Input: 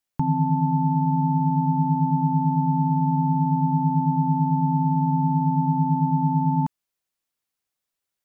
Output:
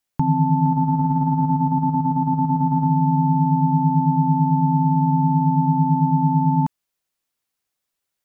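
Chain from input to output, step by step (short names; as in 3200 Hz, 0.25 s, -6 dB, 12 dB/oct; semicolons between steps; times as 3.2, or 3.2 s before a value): 0.65–2.87 negative-ratio compressor -22 dBFS, ratio -0.5; gain +3.5 dB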